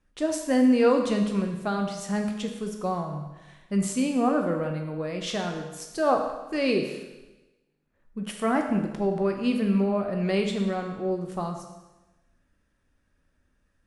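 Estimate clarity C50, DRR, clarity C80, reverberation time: 5.5 dB, 3.0 dB, 7.5 dB, 1.1 s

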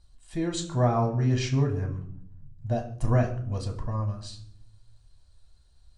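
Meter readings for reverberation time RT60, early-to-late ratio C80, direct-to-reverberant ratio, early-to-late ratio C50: 0.65 s, 14.0 dB, 0.5 dB, 10.5 dB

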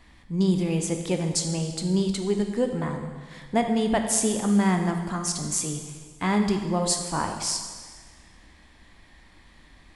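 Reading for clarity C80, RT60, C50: 7.5 dB, 1.6 s, 6.0 dB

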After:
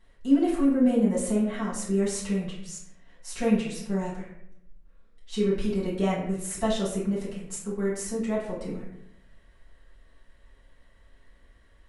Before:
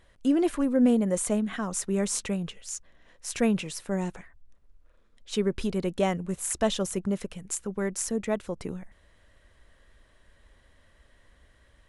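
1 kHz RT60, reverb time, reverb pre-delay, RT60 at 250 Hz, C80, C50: 0.65 s, 0.75 s, 3 ms, 1.0 s, 7.0 dB, 3.5 dB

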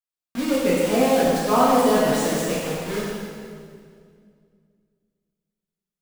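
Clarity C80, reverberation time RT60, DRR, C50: 0.0 dB, 2.1 s, -7.5 dB, -2.0 dB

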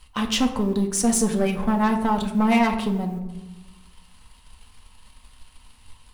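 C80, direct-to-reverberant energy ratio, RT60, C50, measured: 11.5 dB, 2.5 dB, 1.1 s, 9.5 dB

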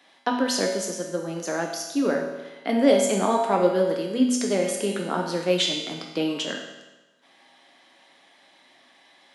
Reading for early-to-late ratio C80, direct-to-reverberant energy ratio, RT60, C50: 6.5 dB, 0.0 dB, 1.1 s, 4.0 dB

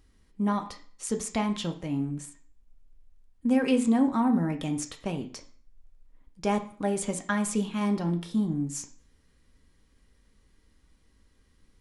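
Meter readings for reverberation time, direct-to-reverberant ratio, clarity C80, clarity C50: 0.50 s, 3.5 dB, 17.0 dB, 12.5 dB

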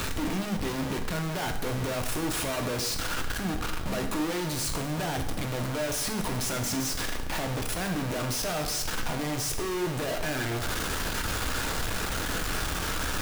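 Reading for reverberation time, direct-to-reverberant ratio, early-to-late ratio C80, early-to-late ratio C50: 1.0 s, 3.5 dB, 9.5 dB, 7.5 dB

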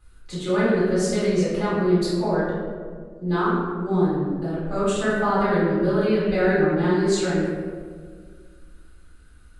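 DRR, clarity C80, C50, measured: -11.5 dB, 0.5 dB, -2.0 dB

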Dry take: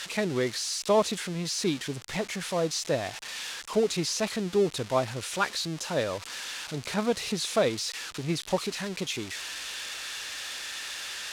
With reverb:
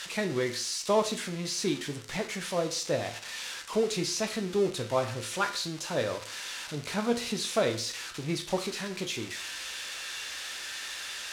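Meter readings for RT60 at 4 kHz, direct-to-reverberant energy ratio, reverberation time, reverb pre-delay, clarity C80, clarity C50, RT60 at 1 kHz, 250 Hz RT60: 0.45 s, 4.5 dB, 0.45 s, 11 ms, 15.5 dB, 11.5 dB, 0.45 s, 0.45 s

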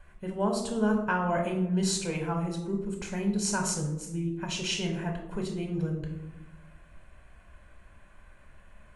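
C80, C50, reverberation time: 9.0 dB, 6.5 dB, 1.0 s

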